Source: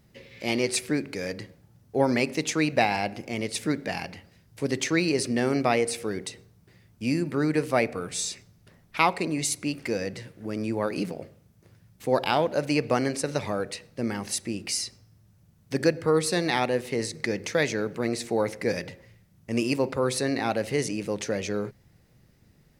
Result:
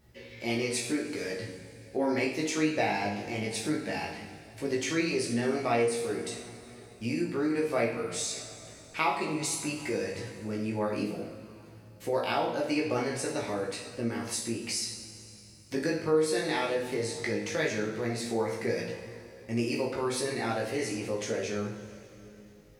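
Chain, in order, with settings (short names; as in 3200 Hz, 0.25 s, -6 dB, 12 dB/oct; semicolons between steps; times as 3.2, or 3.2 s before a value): two-slope reverb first 0.57 s, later 3.2 s, from -18 dB, DRR -2 dB; chorus 0.15 Hz, delay 16.5 ms, depth 2.9 ms; compressor 1.5:1, threshold -35 dBFS, peak gain reduction 8 dB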